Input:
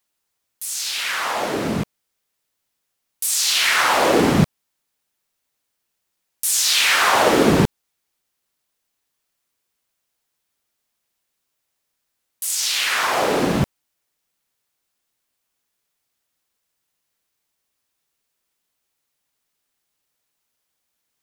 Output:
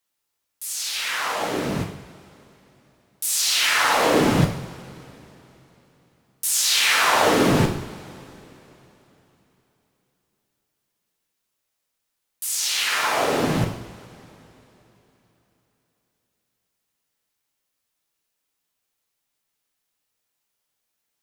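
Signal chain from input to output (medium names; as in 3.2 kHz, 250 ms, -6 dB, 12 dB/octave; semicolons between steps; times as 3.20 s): frequency shift -23 Hz; two-slope reverb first 0.6 s, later 3.6 s, from -20 dB, DRR 2.5 dB; trim -4 dB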